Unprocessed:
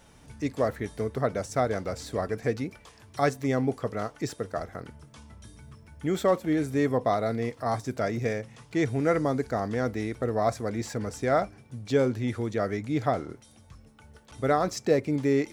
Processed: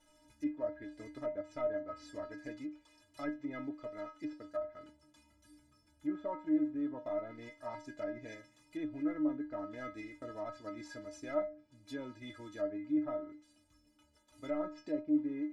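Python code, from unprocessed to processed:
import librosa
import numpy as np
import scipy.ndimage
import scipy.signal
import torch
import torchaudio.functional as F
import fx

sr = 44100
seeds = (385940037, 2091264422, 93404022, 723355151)

p1 = fx.cvsd(x, sr, bps=64000)
p2 = fx.level_steps(p1, sr, step_db=15)
p3 = p1 + (p2 * 10.0 ** (-2.0 / 20.0))
p4 = fx.stiff_resonator(p3, sr, f0_hz=300.0, decay_s=0.3, stiffness=0.008)
y = fx.env_lowpass_down(p4, sr, base_hz=1400.0, full_db=-35.0)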